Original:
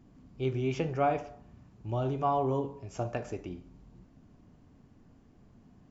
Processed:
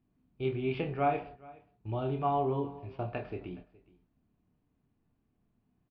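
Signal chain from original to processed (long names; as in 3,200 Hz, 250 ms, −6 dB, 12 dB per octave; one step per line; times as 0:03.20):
Butterworth low-pass 4,400 Hz 72 dB per octave
parametric band 2,500 Hz +4.5 dB 0.24 octaves
notch filter 550 Hz, Q 12
double-tracking delay 28 ms −6.5 dB
noise gate −45 dBFS, range −15 dB
single-tap delay 419 ms −22.5 dB
level −2.5 dB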